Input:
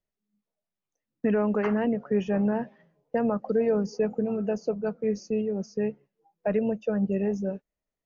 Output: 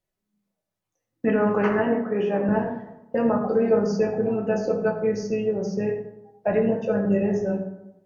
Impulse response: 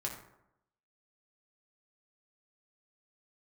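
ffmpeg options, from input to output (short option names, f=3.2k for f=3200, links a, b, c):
-filter_complex "[0:a]asettb=1/sr,asplit=3[a][b][c];[a]atrim=end=1.794[d];[b]atrim=start=1.79:end=2.49,asetpts=PTS-STARTPTS,afade=t=in:d=0.004:c=qsin,afade=t=out:st=0.696:d=0.004:c=qsin,highpass=230,lowpass=3.4k[e];[c]atrim=start=2.486[f];[d][e]acrossfade=d=0.004:c1=hsin:c2=qsin[g];[g][f]acrossfade=d=0.004:c1=qsin:c2=hsin[h];[1:a]atrim=start_sample=2205,asetrate=38808,aresample=44100[i];[h][i]afir=irnorm=-1:irlink=0,volume=4.5dB"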